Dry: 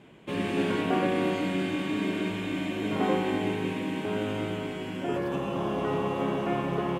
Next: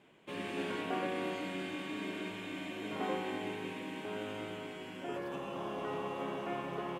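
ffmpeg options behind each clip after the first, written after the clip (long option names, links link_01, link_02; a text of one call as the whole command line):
ffmpeg -i in.wav -af "lowshelf=frequency=260:gain=-10.5,volume=-7dB" out.wav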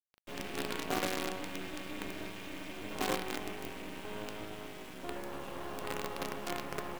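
ffmpeg -i in.wav -af "acrusher=bits=6:dc=4:mix=0:aa=0.000001,volume=2dB" out.wav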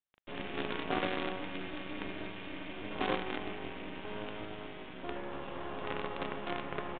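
ffmpeg -i in.wav -af "aresample=8000,aresample=44100,volume=1dB" out.wav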